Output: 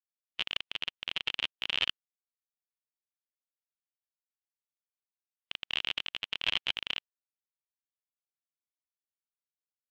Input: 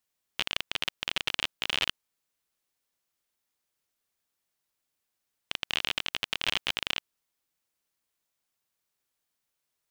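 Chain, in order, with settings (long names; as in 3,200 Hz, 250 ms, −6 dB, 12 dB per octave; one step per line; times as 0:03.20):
every bin expanded away from the loudest bin 1.5 to 1
level −3 dB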